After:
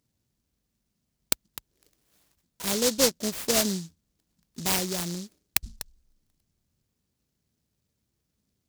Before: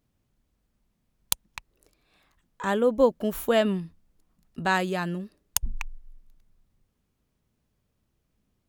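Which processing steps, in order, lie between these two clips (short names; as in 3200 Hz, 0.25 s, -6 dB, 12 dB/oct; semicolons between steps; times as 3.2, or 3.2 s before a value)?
HPF 61 Hz 12 dB/oct; high shelf 4700 Hz +6 dB; noise-modulated delay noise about 5400 Hz, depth 0.27 ms; gain -2.5 dB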